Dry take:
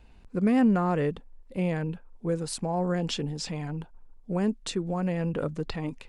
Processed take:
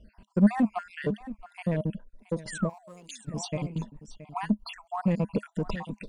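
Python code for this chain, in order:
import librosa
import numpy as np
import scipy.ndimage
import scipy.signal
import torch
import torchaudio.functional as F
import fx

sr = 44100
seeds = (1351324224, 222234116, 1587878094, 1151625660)

p1 = fx.spec_dropout(x, sr, seeds[0], share_pct=61)
p2 = np.clip(p1, -10.0 ** (-28.5 / 20.0), 10.0 ** (-28.5 / 20.0))
p3 = p1 + F.gain(torch.from_numpy(p2), -6.0).numpy()
p4 = fx.spec_paint(p3, sr, seeds[1], shape='fall', start_s=2.47, length_s=0.75, low_hz=210.0, high_hz=2100.0, level_db=-38.0)
p5 = fx.small_body(p4, sr, hz=(210.0, 620.0, 980.0), ring_ms=75, db=11)
p6 = p5 + fx.echo_single(p5, sr, ms=673, db=-16.5, dry=0)
p7 = fx.rider(p6, sr, range_db=3, speed_s=2.0)
p8 = fx.pre_emphasis(p7, sr, coefficient=0.97, at=(2.68, 3.27), fade=0.02)
p9 = 10.0 ** (-11.0 / 20.0) * np.tanh(p8 / 10.0 ** (-11.0 / 20.0))
y = fx.am_noise(p9, sr, seeds[2], hz=5.7, depth_pct=50)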